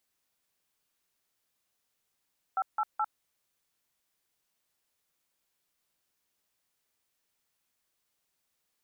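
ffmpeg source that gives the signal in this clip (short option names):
-f lavfi -i "aevalsrc='0.0376*clip(min(mod(t,0.212),0.051-mod(t,0.212))/0.002,0,1)*(eq(floor(t/0.212),0)*(sin(2*PI*770*mod(t,0.212))+sin(2*PI*1336*mod(t,0.212)))+eq(floor(t/0.212),1)*(sin(2*PI*852*mod(t,0.212))+sin(2*PI*1336*mod(t,0.212)))+eq(floor(t/0.212),2)*(sin(2*PI*852*mod(t,0.212))+sin(2*PI*1336*mod(t,0.212))))':d=0.636:s=44100"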